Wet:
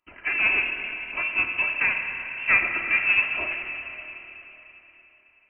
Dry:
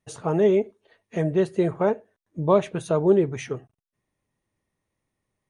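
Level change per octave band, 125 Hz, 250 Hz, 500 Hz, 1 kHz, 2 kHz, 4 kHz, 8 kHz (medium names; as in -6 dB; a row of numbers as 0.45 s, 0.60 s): under -20 dB, -20.0 dB, -22.0 dB, -4.0 dB, +20.5 dB, +8.5 dB, under -35 dB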